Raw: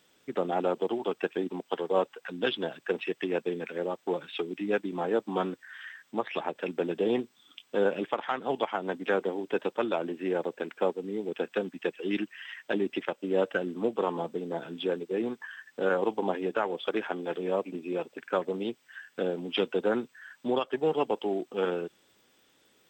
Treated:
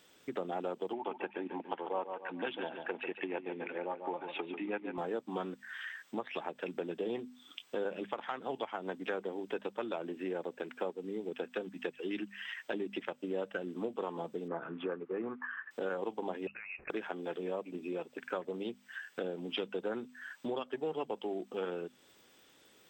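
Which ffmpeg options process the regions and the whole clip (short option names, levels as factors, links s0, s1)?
-filter_complex "[0:a]asettb=1/sr,asplit=3[s0][s1][s2];[s0]atrim=end=0.934[s3];[s1]atrim=start=0.93:end=4.98,asetpts=PTS-STARTPTS,afade=t=in:d=0.004:c=qsin,afade=t=out:st=4.046:d=0.004:c=qsin,highpass=160,equalizer=f=180:t=q:w=4:g=-4,equalizer=f=440:t=q:w=4:g=-5,equalizer=f=880:t=q:w=4:g=9,equalizer=f=2300:t=q:w=4:g=4,lowpass=f=2900:w=0.5412,lowpass=f=2900:w=1.3066,aecho=1:1:142|284|426:0.335|0.104|0.0322,atrim=end_sample=178605[s4];[s2]atrim=start=4.976[s5];[s3][s4]acrossfade=d=0.004:c1=hsin:c2=qsin[s6];[s6][s5]acrossfade=d=0.004:c1=qsin:c2=hsin,asettb=1/sr,asplit=3[s7][s8][s9];[s7]atrim=end=14.484[s10];[s8]atrim=start=14.48:end=15.71,asetpts=PTS-STARTPTS,afade=t=in:d=0.004:c=qsin,afade=t=out:st=1.226:d=0.004:c=qsin,lowpass=f=2300:w=0.5412,lowpass=f=2300:w=1.3066,equalizer=f=1200:w=2.5:g=12.5[s11];[s9]atrim=start=15.706[s12];[s10][s11]acrossfade=d=0.004:c1=hsin:c2=qsin[s13];[s13][s12]acrossfade=d=0.004:c1=qsin:c2=hsin,asettb=1/sr,asplit=3[s14][s15][s16];[s14]atrim=end=16.474[s17];[s15]atrim=start=16.47:end=16.9,asetpts=PTS-STARTPTS,afade=t=in:d=0.004:c=qsin,afade=t=out:st=0.426:d=0.004:c=qsin,lowshelf=f=440:g=-10.5,acompressor=threshold=0.0112:ratio=10:attack=3.2:release=140:knee=1:detection=peak,lowpass=f=2600:t=q:w=0.5098,lowpass=f=2600:t=q:w=0.6013,lowpass=f=2600:t=q:w=0.9,lowpass=f=2600:t=q:w=2.563,afreqshift=-3000[s18];[s16]atrim=start=16.896[s19];[s17][s18]acrossfade=d=0.004:c1=hsin:c2=qsin[s20];[s20][s19]acrossfade=d=0.004:c1=qsin:c2=hsin,bandreject=f=50:t=h:w=6,bandreject=f=100:t=h:w=6,bandreject=f=150:t=h:w=6,bandreject=f=200:t=h:w=6,bandreject=f=250:t=h:w=6,acompressor=threshold=0.00891:ratio=2.5,volume=1.26"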